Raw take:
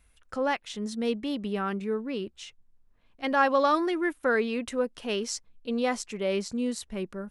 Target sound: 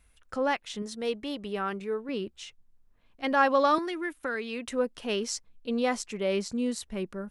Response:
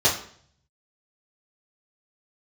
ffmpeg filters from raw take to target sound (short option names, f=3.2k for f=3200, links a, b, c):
-filter_complex "[0:a]asettb=1/sr,asplit=3[a][b][c];[a]atrim=end=0.824[d];[b]atrim=start=0.82:end=2.09,asetpts=PTS-STARTPTS,afade=t=in:d=0.004:c=qsin,afade=t=out:st=1.266:d=0.004:c=qsin,equalizer=f=230:w=2.2:g=-8.5[e];[c]atrim=start=2.086[f];[d][e]acrossfade=d=0.004:c1=hsin:c2=qsin[g];[g][f]acrossfade=d=0.004:c1=qsin:c2=hsin,asettb=1/sr,asplit=3[h][i][j];[h]atrim=end=3.784[k];[i]atrim=start=3.78:end=4.69,asetpts=PTS-STARTPTS,afade=t=in:d=0.004:c=qsin,afade=t=out:st=0.906:d=0.004:c=qsin,acrossover=split=240|1500[l][m][n];[l]acompressor=threshold=-46dB:ratio=4[o];[m]acompressor=threshold=-35dB:ratio=4[p];[n]acompressor=threshold=-34dB:ratio=4[q];[o][p][q]amix=inputs=3:normalize=0[r];[j]atrim=start=4.686[s];[k][r]acrossfade=d=0.004:c1=hsin:c2=qsin[t];[t][s]acrossfade=d=0.004:c1=qsin:c2=hsin"